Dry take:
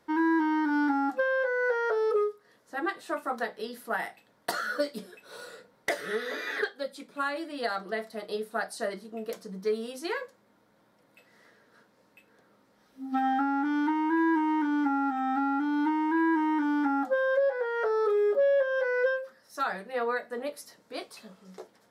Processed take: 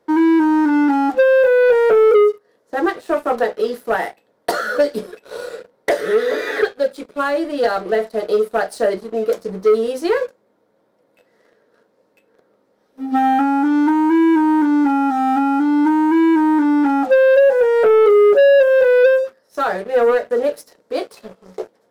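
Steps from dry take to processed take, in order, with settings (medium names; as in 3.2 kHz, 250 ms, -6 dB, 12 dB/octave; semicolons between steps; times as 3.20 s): peaking EQ 470 Hz +12 dB 1.4 oct; waveshaping leveller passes 2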